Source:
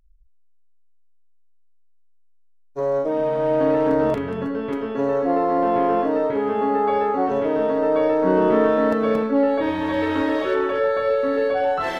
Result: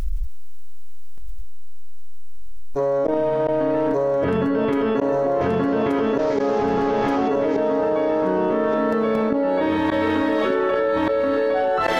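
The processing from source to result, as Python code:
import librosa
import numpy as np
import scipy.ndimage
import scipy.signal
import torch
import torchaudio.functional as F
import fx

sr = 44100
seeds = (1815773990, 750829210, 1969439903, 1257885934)

y = fx.delta_mod(x, sr, bps=32000, step_db=-36.0, at=(5.41, 7.28))
y = fx.gate_flip(y, sr, shuts_db=-14.0, range_db=-27)
y = fx.echo_feedback(y, sr, ms=1178, feedback_pct=28, wet_db=-11)
y = fx.env_flatten(y, sr, amount_pct=100)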